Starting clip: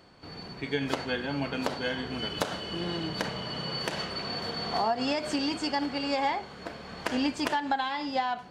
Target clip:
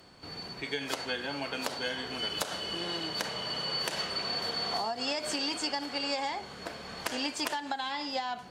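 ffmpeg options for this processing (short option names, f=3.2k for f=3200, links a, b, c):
-filter_complex "[0:a]acrossover=split=360|4100[a][b][c];[a]acompressor=threshold=-47dB:ratio=4[d];[b]acompressor=threshold=-32dB:ratio=4[e];[c]acompressor=threshold=-40dB:ratio=4[f];[d][e][f]amix=inputs=3:normalize=0,aemphasis=mode=production:type=cd"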